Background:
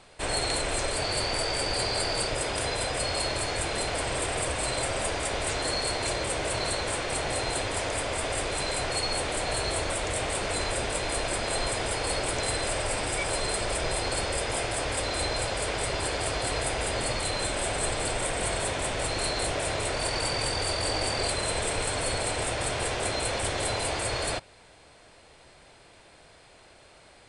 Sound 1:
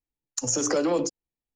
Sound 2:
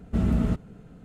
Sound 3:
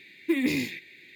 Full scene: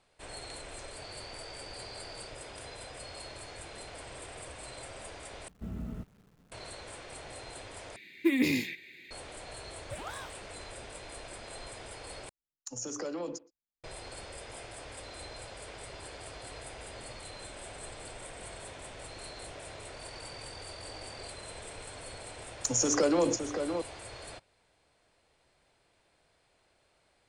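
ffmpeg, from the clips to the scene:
-filter_complex "[3:a]asplit=2[a][b];[1:a]asplit=2[c][d];[0:a]volume=-16dB[e];[2:a]acrusher=bits=9:dc=4:mix=0:aa=0.000001[f];[b]aeval=exprs='val(0)*sin(2*PI*790*n/s+790*0.75/1.8*sin(2*PI*1.8*n/s))':c=same[g];[c]asplit=2[h][i];[i]adelay=120,highpass=300,lowpass=3.4k,asoftclip=type=hard:threshold=-23dB,volume=-18dB[j];[h][j]amix=inputs=2:normalize=0[k];[d]asplit=2[l][m];[m]adelay=565.6,volume=-7dB,highshelf=f=4k:g=-12.7[n];[l][n]amix=inputs=2:normalize=0[o];[e]asplit=4[p][q][r][s];[p]atrim=end=5.484[t];[f]atrim=end=1.04,asetpts=PTS-STARTPTS,volume=-16dB[u];[q]atrim=start=6.516:end=7.964[v];[a]atrim=end=1.15,asetpts=PTS-STARTPTS,volume=-1dB[w];[r]atrim=start=9.106:end=12.294[x];[k]atrim=end=1.55,asetpts=PTS-STARTPTS,volume=-13dB[y];[s]atrim=start=13.836[z];[g]atrim=end=1.15,asetpts=PTS-STARTPTS,volume=-14dB,afade=t=in:d=0.004:c=hsin,afade=t=out:st=1.146:d=0.004:c=hsin,adelay=424242S[aa];[o]atrim=end=1.55,asetpts=PTS-STARTPTS,volume=-2dB,afade=t=in:d=0.004:c=hsin,afade=t=out:st=1.546:d=0.004:c=hsin,adelay=22270[ab];[t][u]acrossfade=d=0.004:c1=hsin:c2=hsin[ac];[ac][v]acrossfade=d=0.004:c1=hsin:c2=hsin[ad];[ad][w]acrossfade=d=0.004:c1=hsin:c2=hsin[ae];[ae][x]acrossfade=d=0.004:c1=hsin:c2=hsin[af];[af][y]acrossfade=d=0.004:c1=hsin:c2=hsin[ag];[ag][z]acrossfade=d=0.004:c1=hsin:c2=hsin[ah];[ah][aa][ab]amix=inputs=3:normalize=0"

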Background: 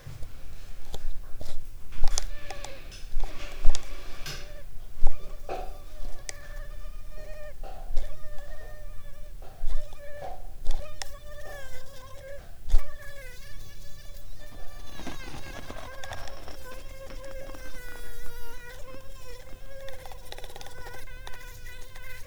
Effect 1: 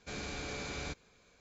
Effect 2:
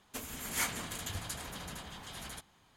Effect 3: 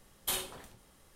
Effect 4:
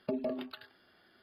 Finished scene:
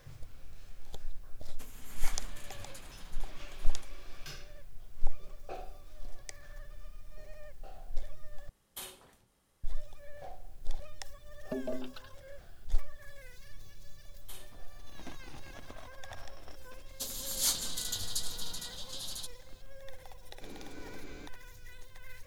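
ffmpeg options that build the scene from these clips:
-filter_complex "[2:a]asplit=2[a][b];[3:a]asplit=2[c][d];[0:a]volume=-8.5dB[e];[4:a]asuperstop=centerf=2000:order=4:qfactor=3.8[f];[b]highshelf=f=3k:t=q:w=3:g=10.5[g];[1:a]equalizer=f=310:t=o:w=1.2:g=12.5[h];[e]asplit=2[i][j];[i]atrim=end=8.494[k];[c]atrim=end=1.15,asetpts=PTS-STARTPTS,volume=-10.5dB[l];[j]atrim=start=9.636[m];[a]atrim=end=2.76,asetpts=PTS-STARTPTS,volume=-11dB,afade=t=in:d=0.004:c=hsin,afade=t=out:st=2.756:d=0.004:c=hsin,adelay=1450[n];[f]atrim=end=1.22,asetpts=PTS-STARTPTS,volume=-3dB,afade=t=in:d=0.004:c=hsin,afade=t=out:st=1.216:d=0.004:c=hsin,adelay=11430[o];[d]atrim=end=1.15,asetpts=PTS-STARTPTS,volume=-17.5dB,afade=t=in:d=0.004:c=hsin,afade=t=out:st=1.146:d=0.004:c=hsin,adelay=14010[p];[g]atrim=end=2.76,asetpts=PTS-STARTPTS,volume=-6.5dB,afade=t=in:d=0.004:c=hsin,afade=t=out:st=2.756:d=0.004:c=hsin,adelay=16860[q];[h]atrim=end=1.4,asetpts=PTS-STARTPTS,volume=-14dB,afade=t=in:d=0.004:c=hsin,afade=t=out:st=1.396:d=0.004:c=hsin,adelay=20340[r];[k][l]acrossfade=d=0.004:c1=hsin:c2=hsin[s];[s][m]acrossfade=d=0.004:c1=hsin:c2=hsin[t];[t][n][o][p][q][r]amix=inputs=6:normalize=0"

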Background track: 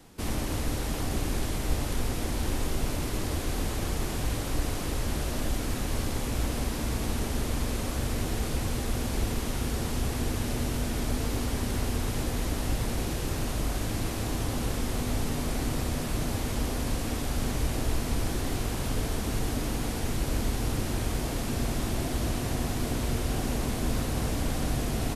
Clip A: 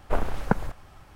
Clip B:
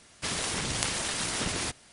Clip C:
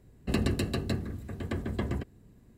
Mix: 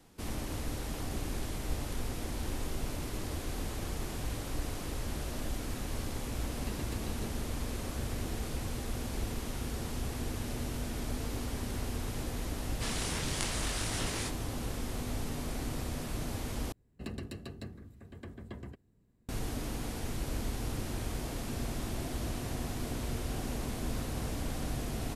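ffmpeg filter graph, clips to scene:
-filter_complex "[3:a]asplit=2[a][b];[0:a]volume=-7dB[c];[2:a]flanger=delay=20:depth=7.5:speed=1.2[d];[c]asplit=2[e][f];[e]atrim=end=16.724[g];[b]atrim=end=2.57,asetpts=PTS-STARTPTS,volume=-13dB[h];[f]atrim=start=19.286[i];[a]atrim=end=2.57,asetpts=PTS-STARTPTS,volume=-15dB,afade=t=in:d=0.004:c=hsin,afade=t=out:st=2.566:d=0.004:c=hsin,adelay=6330[j];[d]atrim=end=1.92,asetpts=PTS-STARTPTS,volume=-3dB,afade=t=in:d=0.004:c=hsin,afade=t=out:st=1.916:d=0.004:c=hsin,adelay=12580[k];[g][h]acrossfade=d=0.004:c1=hsin:c2=hsin[l];[l][i]acrossfade=d=0.004:c1=hsin:c2=hsin[m];[m][j][k]amix=inputs=3:normalize=0"

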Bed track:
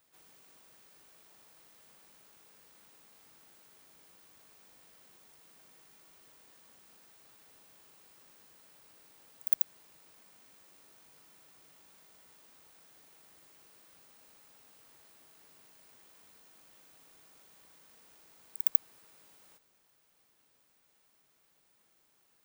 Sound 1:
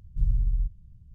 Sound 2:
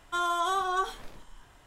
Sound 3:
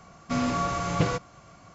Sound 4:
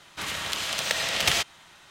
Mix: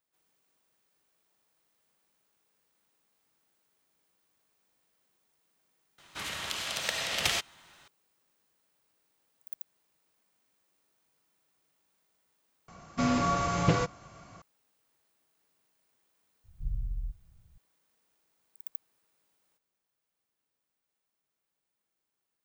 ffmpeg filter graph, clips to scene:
-filter_complex "[0:a]volume=-14.5dB,asplit=2[a][b];[a]atrim=end=12.684[c];[3:a]atrim=end=1.74,asetpts=PTS-STARTPTS,volume=-0.5dB[d];[b]atrim=start=14.416[e];[4:a]atrim=end=1.9,asetpts=PTS-STARTPTS,volume=-5.5dB,afade=t=in:d=0.004:c=hsin,afade=t=out:st=1.896:d=0.004:c=hsin,adelay=5980[f];[1:a]atrim=end=1.14,asetpts=PTS-STARTPTS,volume=-10dB,afade=t=in:d=0.004:c=hsin,afade=t=out:st=1.136:d=0.004:c=hsin,adelay=16440[g];[c][d]acrossfade=d=0.004:c1=hsin:c2=hsin[h];[h][e]acrossfade=d=0.004:c1=hsin:c2=hsin[i];[i][f][g]amix=inputs=3:normalize=0"

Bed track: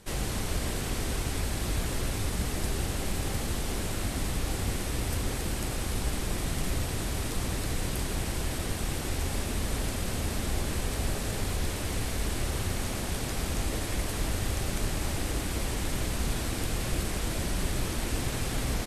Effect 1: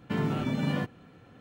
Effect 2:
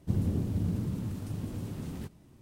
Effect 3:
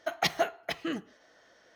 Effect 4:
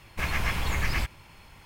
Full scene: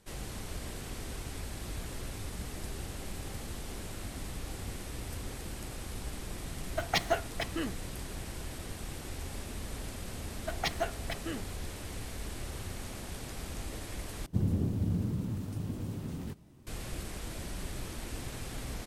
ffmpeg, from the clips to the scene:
-filter_complex "[3:a]asplit=2[a][b];[0:a]volume=-9.5dB[c];[a]aeval=exprs='if(lt(val(0),0),0.708*val(0),val(0))':c=same[d];[c]asplit=2[e][f];[e]atrim=end=14.264[g];[2:a]atrim=end=2.41,asetpts=PTS-STARTPTS,volume=-0.5dB[h];[f]atrim=start=16.666[i];[d]atrim=end=1.75,asetpts=PTS-STARTPTS,volume=-0.5dB,afade=t=in:d=0.004:c=hsin,afade=t=out:st=1.746:d=0.004:c=hsin,adelay=6710[j];[b]atrim=end=1.75,asetpts=PTS-STARTPTS,volume=-5.5dB,afade=t=in:d=0.004:c=hsin,afade=t=out:st=1.746:d=0.004:c=hsin,adelay=10410[k];[g][h]acrossfade=d=0.004:c1=hsin:c2=hsin[l];[l][i]acrossfade=d=0.004:c1=hsin:c2=hsin[m];[m][j][k]amix=inputs=3:normalize=0"

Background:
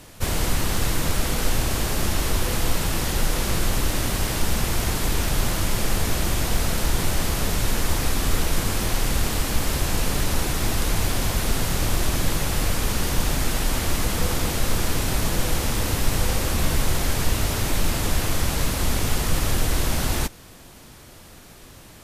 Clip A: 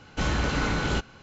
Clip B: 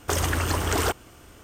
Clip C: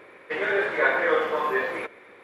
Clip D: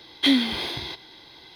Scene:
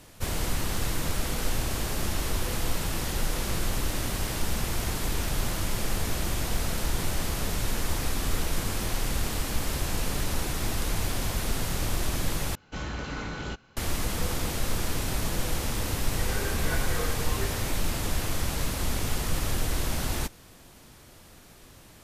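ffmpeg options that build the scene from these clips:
-filter_complex "[0:a]volume=-6dB[a];[3:a]aecho=1:1:2.6:0.65[b];[a]asplit=2[c][d];[c]atrim=end=12.554[e];[1:a]atrim=end=1.22,asetpts=PTS-STARTPTS,volume=-8.5dB[f];[d]atrim=start=13.766[g];[b]atrim=end=2.23,asetpts=PTS-STARTPTS,volume=-15dB,afade=t=in:d=0.004:c=hsin,afade=t=out:st=2.226:d=0.004:c=hsin,adelay=15870[h];[e][f]acrossfade=d=0.004:c1=hsin:c2=hsin[i];[i][g]acrossfade=d=0.004:c1=hsin:c2=hsin[j];[j][h]amix=inputs=2:normalize=0"

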